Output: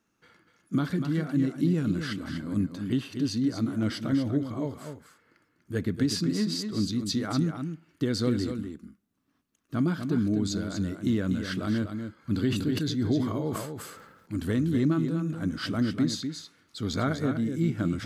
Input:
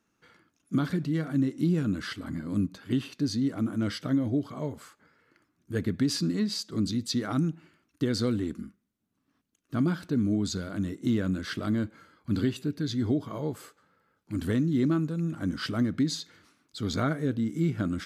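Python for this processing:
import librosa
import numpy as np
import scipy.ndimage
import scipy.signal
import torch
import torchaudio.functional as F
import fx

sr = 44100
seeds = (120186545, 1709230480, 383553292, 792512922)

p1 = x + fx.echo_single(x, sr, ms=244, db=-7.5, dry=0)
y = fx.sustainer(p1, sr, db_per_s=47.0, at=(12.47, 14.37))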